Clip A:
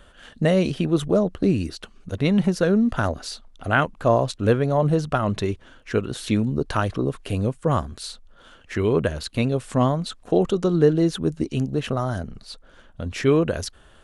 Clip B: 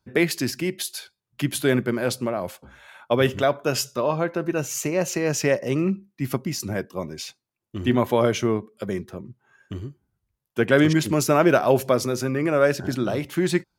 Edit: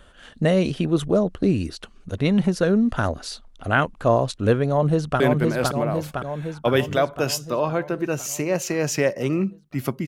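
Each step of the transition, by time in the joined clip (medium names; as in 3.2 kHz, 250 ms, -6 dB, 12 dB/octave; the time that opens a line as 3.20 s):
clip A
4.70–5.20 s: echo throw 510 ms, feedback 65%, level -2.5 dB
5.20 s: go over to clip B from 1.66 s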